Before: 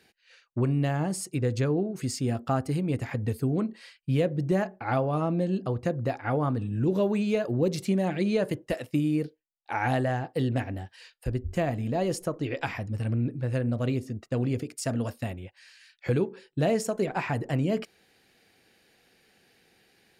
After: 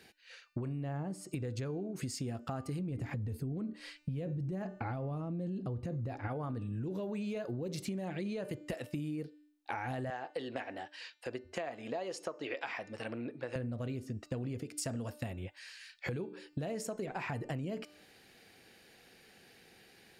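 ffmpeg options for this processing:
-filter_complex "[0:a]asettb=1/sr,asplit=3[a][b][c];[a]atrim=end=0.834[d];[b]atrim=start=0.83:end=1.29,asetpts=PTS-STARTPTS,afade=t=in:d=0.004:c=qsin,afade=t=out:st=0.456:d=0.004:c=qsin,highshelf=f=2.1k:g=-12[e];[c]atrim=start=1.286[f];[d][e]acrossfade=d=0.004:c1=hsin:c2=qsin[g];[g][f]acrossfade=d=0.004:c1=qsin:c2=hsin,asettb=1/sr,asplit=3[h][i][j];[h]atrim=end=2.794[k];[i]atrim=start=2.79:end=6.28,asetpts=PTS-STARTPTS,afade=t=in:d=0.004:c=qsin,afade=t=out:st=3.486:d=0.004:c=qsin,lowshelf=f=350:g=11[l];[j]atrim=start=6.276[m];[k][l]acrossfade=d=0.004:c1=hsin:c2=qsin[n];[n][m]acrossfade=d=0.004:c1=qsin:c2=hsin,asettb=1/sr,asplit=3[o][p][q];[o]atrim=end=10.104[r];[p]atrim=start=10.1:end=13.56,asetpts=PTS-STARTPTS,afade=t=in:d=0.004:c=qsin,afade=t=out:st=3.456:d=0.004:c=qsin,highpass=490,lowpass=5.9k[s];[q]atrim=start=13.556[t];[r][s]acrossfade=d=0.004:c1=hsin:c2=qsin[u];[u][t]acrossfade=d=0.004:c1=qsin:c2=hsin,bandreject=f=298.6:t=h:w=4,bandreject=f=597.2:t=h:w=4,bandreject=f=895.8:t=h:w=4,bandreject=f=1.1944k:t=h:w=4,bandreject=f=1.493k:t=h:w=4,bandreject=f=1.7916k:t=h:w=4,bandreject=f=2.0902k:t=h:w=4,bandreject=f=2.3888k:t=h:w=4,bandreject=f=2.6874k:t=h:w=4,bandreject=f=2.986k:t=h:w=4,bandreject=f=3.2846k:t=h:w=4,bandreject=f=3.5832k:t=h:w=4,bandreject=f=3.8818k:t=h:w=4,bandreject=f=4.1804k:t=h:w=4,bandreject=f=4.479k:t=h:w=4,bandreject=f=4.7776k:t=h:w=4,bandreject=f=5.0762k:t=h:w=4,bandreject=f=5.3748k:t=h:w=4,bandreject=f=5.6734k:t=h:w=4,bandreject=f=5.972k:t=h:w=4,bandreject=f=6.2706k:t=h:w=4,bandreject=f=6.5692k:t=h:w=4,bandreject=f=6.8678k:t=h:w=4,bandreject=f=7.1664k:t=h:w=4,bandreject=f=7.465k:t=h:w=4,bandreject=f=7.7636k:t=h:w=4,bandreject=f=8.0622k:t=h:w=4,bandreject=f=8.3608k:t=h:w=4,alimiter=limit=-21dB:level=0:latency=1:release=23,acompressor=threshold=-38dB:ratio=12,volume=3dB"

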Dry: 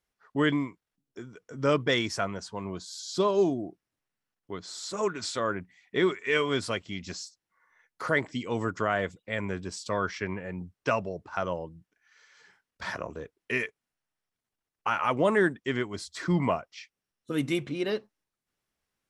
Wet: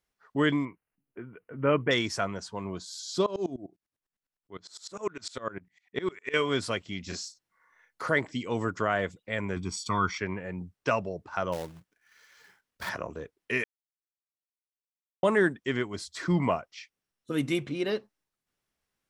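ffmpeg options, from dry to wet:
-filter_complex "[0:a]asettb=1/sr,asplit=3[a][b][c];[a]atrim=end=0.654[d];[b]atrim=start=0.65:end=1.91,asetpts=PTS-STARTPTS,afade=t=in:d=0.004:c=qsin,afade=t=out:st=1.256:d=0.004:c=qsin,asuperstop=centerf=5400:order=20:qfactor=0.89[e];[c]atrim=start=1.906[f];[d][e]acrossfade=d=0.004:c1=hsin:c2=qsin[g];[g][f]acrossfade=d=0.004:c1=qsin:c2=hsin,asettb=1/sr,asplit=3[h][i][j];[h]atrim=end=3.264[k];[i]atrim=start=3.26:end=6.34,asetpts=PTS-STARTPTS,afade=t=in:d=0.004:c=qsin,afade=t=out:st=3.076:d=0.004:c=qsin,aeval=exprs='val(0)*pow(10,-23*if(lt(mod(-9.9*n/s,1),2*abs(-9.9)/1000),1-mod(-9.9*n/s,1)/(2*abs(-9.9)/1000),(mod(-9.9*n/s,1)-2*abs(-9.9)/1000)/(1-2*abs(-9.9)/1000))/20)':c=same[l];[j]atrim=start=6.336[m];[k][l]acrossfade=d=0.004:c1=hsin:c2=qsin[n];[n][m]acrossfade=d=0.004:c1=qsin:c2=hsin,asettb=1/sr,asplit=3[o][p][q];[o]atrim=end=7.034[r];[p]atrim=start=7.03:end=8.03,asetpts=PTS-STARTPTS,afade=t=in:d=0.004:c=qsin,afade=t=out:st=0.996:d=0.004:c=qsin,asplit=2[s][t];[t]adelay=35,volume=-3.5dB[u];[s][u]amix=inputs=2:normalize=0,atrim=end_sample=44100[v];[q]atrim=start=8.026[w];[r][v]acrossfade=d=0.004:c1=hsin:c2=qsin[x];[x][w]acrossfade=d=0.004:c1=qsin:c2=hsin,asettb=1/sr,asplit=3[y][z][aa];[y]atrim=end=9.564[ab];[z]atrim=start=9.56:end=10.18,asetpts=PTS-STARTPTS,afade=t=in:d=0.004:c=qsin,afade=t=out:st=0.616:d=0.004:c=qsin,aecho=1:1:0.9:0.89,atrim=end_sample=27342[ac];[aa]atrim=start=10.176[ad];[ab][ac]acrossfade=d=0.004:c1=hsin:c2=qsin[ae];[ae][ad]acrossfade=d=0.004:c1=qsin:c2=hsin,asplit=3[af][ag][ah];[af]afade=t=out:st=11.52:d=0.02[ai];[ag]acrusher=bits=2:mode=log:mix=0:aa=0.000001,afade=t=in:st=11.52:d=0.02,afade=t=out:st=12.88:d=0.02[aj];[ah]afade=t=in:st=12.88:d=0.02[ak];[ai][aj][ak]amix=inputs=3:normalize=0,asplit=3[al][am][an];[al]atrim=end=13.64,asetpts=PTS-STARTPTS,afade=t=out:st=13.636:d=0.004:c=hsin[ao];[am]atrim=start=13.64:end=15.23,asetpts=PTS-STARTPTS,volume=0[ap];[an]atrim=start=15.23,asetpts=PTS-STARTPTS,afade=t=in:d=0.004:c=hsin[aq];[ao][ap][aq]concat=n=3:v=0:a=1"

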